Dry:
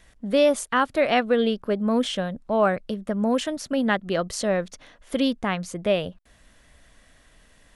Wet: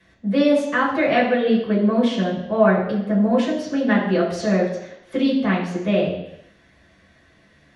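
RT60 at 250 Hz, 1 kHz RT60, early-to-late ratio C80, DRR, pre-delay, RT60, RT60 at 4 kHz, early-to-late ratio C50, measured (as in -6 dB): 0.80 s, 0.80 s, 7.5 dB, -7.5 dB, 3 ms, 0.80 s, 0.85 s, 5.0 dB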